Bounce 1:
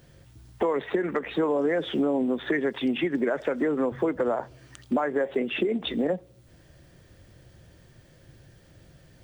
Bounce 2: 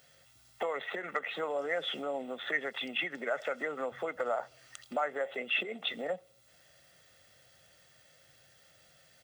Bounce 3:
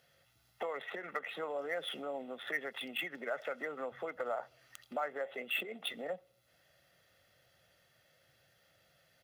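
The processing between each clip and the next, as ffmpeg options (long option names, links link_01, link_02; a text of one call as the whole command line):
ffmpeg -i in.wav -af "highpass=frequency=1500:poles=1,aecho=1:1:1.5:0.56" out.wav
ffmpeg -i in.wav -af "adynamicsmooth=sensitivity=7.5:basefreq=6100,aexciter=amount=13.5:drive=1.5:freq=11000,volume=-4.5dB" out.wav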